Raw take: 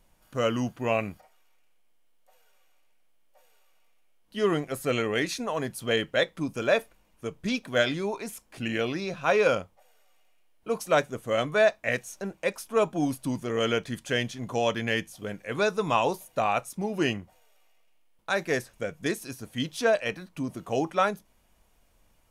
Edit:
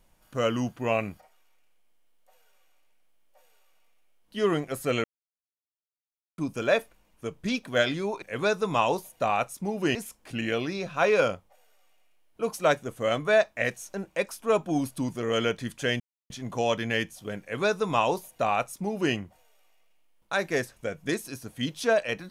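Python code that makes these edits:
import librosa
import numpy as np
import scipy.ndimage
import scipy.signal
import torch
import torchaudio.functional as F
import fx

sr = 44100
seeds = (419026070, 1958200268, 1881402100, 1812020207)

y = fx.edit(x, sr, fx.silence(start_s=5.04, length_s=1.34),
    fx.insert_silence(at_s=14.27, length_s=0.3),
    fx.duplicate(start_s=15.38, length_s=1.73, to_s=8.22), tone=tone)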